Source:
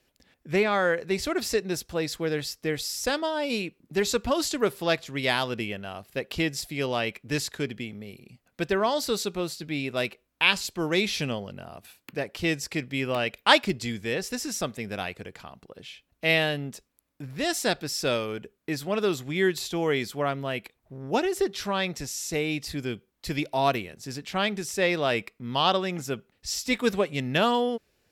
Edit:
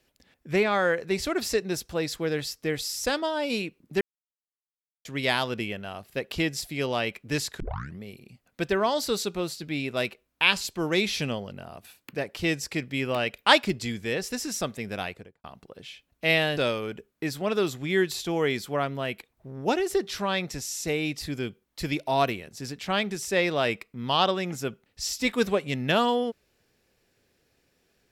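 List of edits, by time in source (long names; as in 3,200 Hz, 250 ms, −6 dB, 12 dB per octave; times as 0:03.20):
0:04.01–0:05.05: silence
0:07.60: tape start 0.40 s
0:15.04–0:15.44: fade out and dull
0:16.57–0:18.03: remove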